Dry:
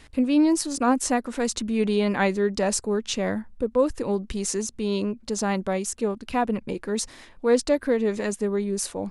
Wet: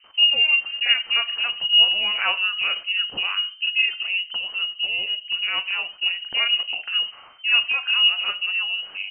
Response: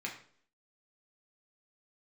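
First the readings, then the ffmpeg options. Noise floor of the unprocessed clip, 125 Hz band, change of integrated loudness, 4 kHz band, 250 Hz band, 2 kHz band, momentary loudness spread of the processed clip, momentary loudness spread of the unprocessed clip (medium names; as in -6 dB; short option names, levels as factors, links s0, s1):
-51 dBFS, under -25 dB, +5.0 dB, +20.5 dB, under -30 dB, +13.0 dB, 9 LU, 7 LU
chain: -filter_complex "[0:a]asplit=2[s0][s1];[s1]equalizer=f=230:t=o:w=0.64:g=13.5[s2];[1:a]atrim=start_sample=2205,afade=t=out:st=0.28:d=0.01,atrim=end_sample=12789[s3];[s2][s3]afir=irnorm=-1:irlink=0,volume=0.335[s4];[s0][s4]amix=inputs=2:normalize=0,lowpass=f=2600:t=q:w=0.5098,lowpass=f=2600:t=q:w=0.6013,lowpass=f=2600:t=q:w=0.9,lowpass=f=2600:t=q:w=2.563,afreqshift=-3100,acrossover=split=2300[s5][s6];[s5]adelay=40[s7];[s7][s6]amix=inputs=2:normalize=0"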